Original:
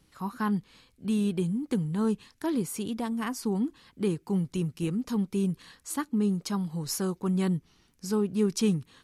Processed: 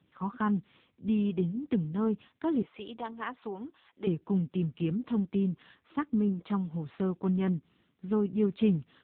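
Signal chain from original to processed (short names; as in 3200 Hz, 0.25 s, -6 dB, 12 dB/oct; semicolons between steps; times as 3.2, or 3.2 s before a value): 2.62–4.07 HPF 460 Hz 12 dB/oct; AMR-NB 6.7 kbps 8000 Hz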